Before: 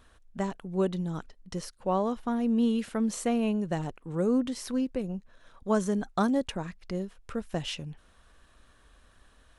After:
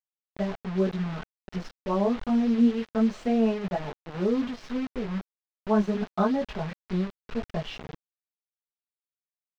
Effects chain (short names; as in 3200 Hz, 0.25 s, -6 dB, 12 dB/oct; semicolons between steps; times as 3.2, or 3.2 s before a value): comb 4.7 ms, depth 99%; chorus voices 4, 0.58 Hz, delay 19 ms, depth 3.3 ms; dynamic EQ 670 Hz, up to +4 dB, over -41 dBFS, Q 1.3; requantised 6-bit, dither none; air absorption 210 m